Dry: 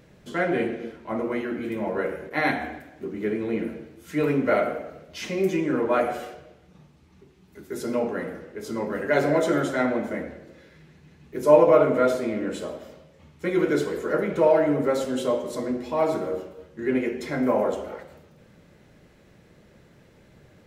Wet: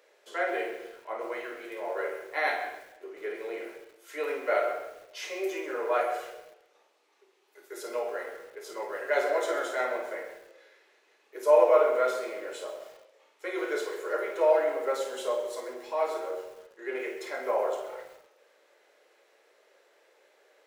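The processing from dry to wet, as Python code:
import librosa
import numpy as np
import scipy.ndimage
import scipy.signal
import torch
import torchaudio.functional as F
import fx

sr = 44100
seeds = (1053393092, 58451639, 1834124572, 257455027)

y = scipy.signal.sosfilt(scipy.signal.butter(6, 420.0, 'highpass', fs=sr, output='sos'), x)
y = fx.room_early_taps(y, sr, ms=(29, 52), db=(-10.0, -7.5))
y = fx.echo_crushed(y, sr, ms=132, feedback_pct=35, bits=7, wet_db=-13.0)
y = y * 10.0 ** (-4.5 / 20.0)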